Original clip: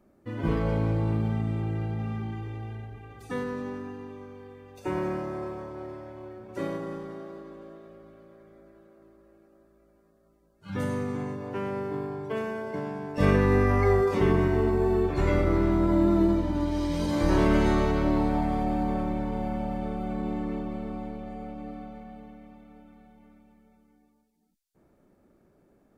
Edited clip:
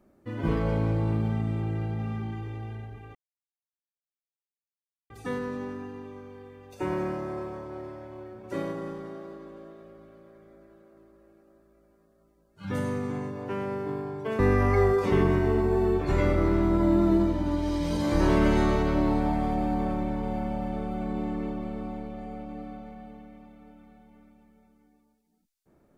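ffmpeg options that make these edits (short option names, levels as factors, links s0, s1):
-filter_complex "[0:a]asplit=3[s0][s1][s2];[s0]atrim=end=3.15,asetpts=PTS-STARTPTS,afade=t=out:st=3.146:d=0.004:c=hsin,apad=pad_dur=1.95[s3];[s1]atrim=start=3.15:end=12.442,asetpts=PTS-STARTPTS,afade=t=in:d=0.004:c=hsin[s4];[s2]atrim=start=13.478[s5];[s3][s4]concat=n=2:v=0:a=1[s6];[s6][s5]acrossfade=d=0.004:c1=hsin:c2=hsin"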